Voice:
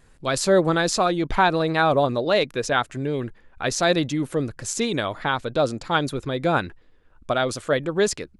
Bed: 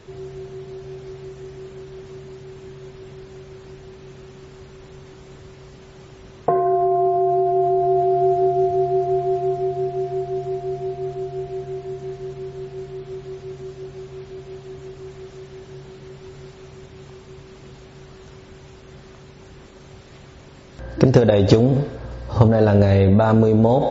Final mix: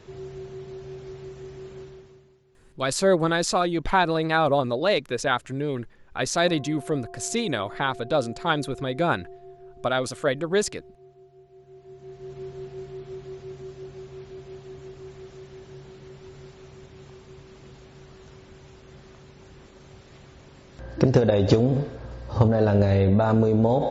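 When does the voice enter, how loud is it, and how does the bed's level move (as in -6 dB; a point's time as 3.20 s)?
2.55 s, -2.0 dB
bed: 1.83 s -3.5 dB
2.44 s -24 dB
11.48 s -24 dB
12.41 s -5 dB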